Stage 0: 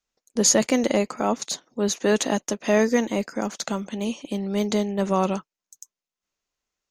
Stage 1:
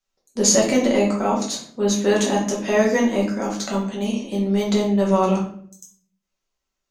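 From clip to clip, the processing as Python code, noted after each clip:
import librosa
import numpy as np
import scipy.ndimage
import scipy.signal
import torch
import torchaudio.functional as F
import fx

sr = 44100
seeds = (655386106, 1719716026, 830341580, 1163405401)

y = fx.room_shoebox(x, sr, seeds[0], volume_m3=69.0, walls='mixed', distance_m=1.1)
y = F.gain(torch.from_numpy(y), -2.5).numpy()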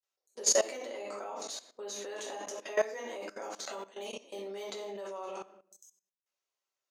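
y = scipy.signal.sosfilt(scipy.signal.butter(4, 400.0, 'highpass', fs=sr, output='sos'), x)
y = fx.level_steps(y, sr, step_db=17)
y = F.gain(torch.from_numpy(y), -6.5).numpy()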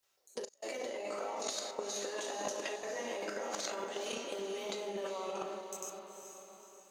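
y = fx.over_compress(x, sr, threshold_db=-45.0, ratio=-0.5)
y = fx.doubler(y, sr, ms=38.0, db=-12.5)
y = fx.echo_diffused(y, sr, ms=464, feedback_pct=49, wet_db=-7.0)
y = F.gain(torch.from_numpy(y), 4.5).numpy()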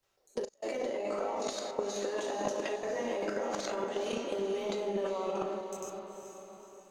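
y = fx.tilt_eq(x, sr, slope=-2.5)
y = F.gain(torch.from_numpy(y), 3.5).numpy()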